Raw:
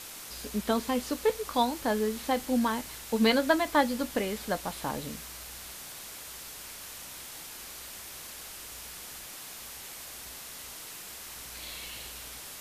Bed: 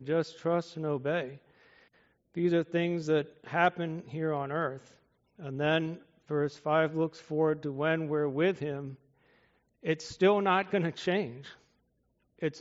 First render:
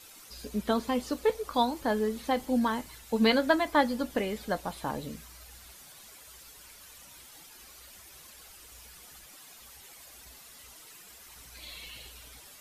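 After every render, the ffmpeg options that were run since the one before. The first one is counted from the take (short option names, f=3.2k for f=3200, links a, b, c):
-af "afftdn=nr=11:nf=-44"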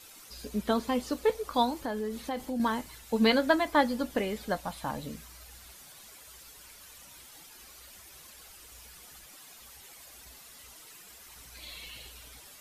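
-filter_complex "[0:a]asettb=1/sr,asplit=3[a][b][c];[a]atrim=end=1.824[d];[b]atrim=start=1.82:end=2.6,asetpts=PTS-STARTPTS,afade=t=in:d=0.004:c=qsin,afade=t=out:st=0.776:d=0.004:c=qsin,acompressor=threshold=-31dB:ratio=3:attack=3.2:release=140:knee=1:detection=peak[e];[c]atrim=start=2.596[f];[d][e]acrossfade=d=0.004:c1=hsin:c2=qsin[g];[g][f]acrossfade=d=0.004:c1=qsin:c2=hsin,asettb=1/sr,asplit=3[h][i][j];[h]atrim=end=4.544[k];[i]atrim=start=4.54:end=5.06,asetpts=PTS-STARTPTS,afade=t=in:d=0.004:c=qsin,afade=t=out:st=0.516:d=0.004:c=qsin,equalizer=f=390:w=4.2:g=-15[l];[j]atrim=start=5.056[m];[k][l]acrossfade=d=0.004:c1=hsin:c2=qsin[n];[n][m]acrossfade=d=0.004:c1=qsin:c2=hsin"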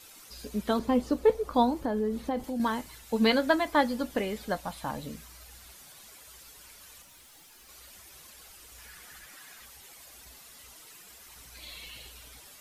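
-filter_complex "[0:a]asettb=1/sr,asplit=3[a][b][c];[a]atrim=end=0.794[d];[b]atrim=start=0.79:end=2.44,asetpts=PTS-STARTPTS,afade=t=in:d=0.004:c=qsin,afade=t=out:st=1.646:d=0.004:c=qsin,tiltshelf=f=1.1k:g=6[e];[c]atrim=start=2.436[f];[d][e]acrossfade=d=0.004:c1=hsin:c2=qsin[g];[g][f]acrossfade=d=0.004:c1=qsin:c2=hsin,asettb=1/sr,asplit=3[h][i][j];[h]atrim=end=7.024[k];[i]atrim=start=7.02:end=7.69,asetpts=PTS-STARTPTS,afade=t=in:d=0.004:c=qsin,afade=t=out:st=0.666:d=0.004:c=qsin,aeval=exprs='(tanh(316*val(0)+0.2)-tanh(0.2))/316':c=same[l];[j]atrim=start=7.686[m];[k][l]acrossfade=d=0.004:c1=hsin:c2=qsin[n];[n][m]acrossfade=d=0.004:c1=qsin:c2=hsin,asettb=1/sr,asplit=3[o][p][q];[o]atrim=end=8.784[r];[p]atrim=start=8.78:end=9.66,asetpts=PTS-STARTPTS,afade=t=in:d=0.004:c=qsin,afade=t=out:st=0.876:d=0.004:c=qsin,equalizer=f=1.7k:w=1.9:g=10[s];[q]atrim=start=9.656[t];[r][s]acrossfade=d=0.004:c1=hsin:c2=qsin[u];[u][t]acrossfade=d=0.004:c1=qsin:c2=hsin"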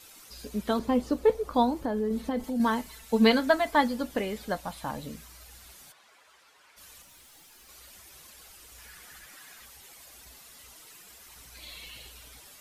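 -filter_complex "[0:a]asettb=1/sr,asplit=3[a][b][c];[a]atrim=end=2.104[d];[b]atrim=start=2.1:end=3.88,asetpts=PTS-STARTPTS,afade=t=in:d=0.004:c=qsin,afade=t=out:st=1.776:d=0.004:c=qsin,aecho=1:1:4.5:0.56,atrim=end_sample=78498[e];[c]atrim=start=3.876[f];[d][e]acrossfade=d=0.004:c1=hsin:c2=qsin[g];[g][f]acrossfade=d=0.004:c1=qsin:c2=hsin,asplit=3[h][i][j];[h]afade=t=out:st=5.91:d=0.02[k];[i]bandpass=f=1.2k:t=q:w=0.72,afade=t=in:st=5.91:d=0.02,afade=t=out:st=6.76:d=0.02[l];[j]afade=t=in:st=6.76:d=0.02[m];[k][l][m]amix=inputs=3:normalize=0"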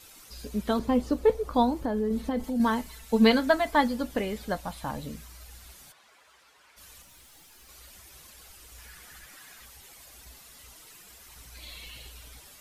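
-af "lowshelf=f=110:g=7.5"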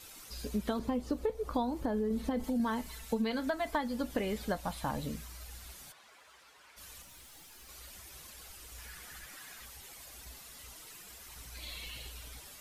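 -af "alimiter=limit=-17dB:level=0:latency=1:release=397,acompressor=threshold=-29dB:ratio=6"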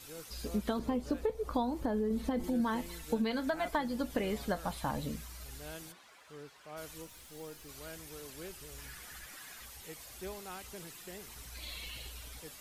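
-filter_complex "[1:a]volume=-20dB[a];[0:a][a]amix=inputs=2:normalize=0"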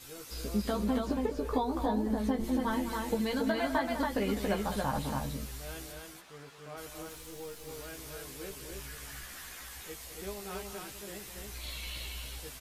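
-filter_complex "[0:a]asplit=2[a][b];[b]adelay=15,volume=-3.5dB[c];[a][c]amix=inputs=2:normalize=0,aecho=1:1:204.1|279.9:0.282|0.708"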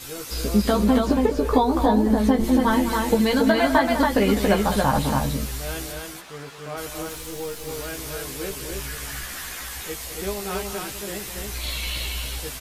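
-af "volume=12dB"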